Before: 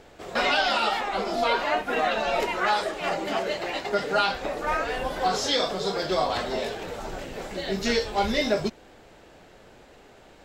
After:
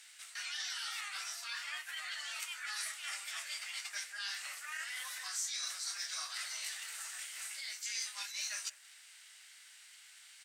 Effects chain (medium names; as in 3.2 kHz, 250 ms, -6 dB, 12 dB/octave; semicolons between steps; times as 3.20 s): high-pass 1.5 kHz 24 dB/octave; reverse; compression 6:1, threshold -37 dBFS, peak gain reduction 14 dB; reverse; dynamic bell 3.3 kHz, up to -5 dB, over -53 dBFS, Q 0.98; formant shift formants +2 st; peaking EQ 9.3 kHz +12.5 dB 1.4 oct; speakerphone echo 180 ms, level -20 dB; trim -2 dB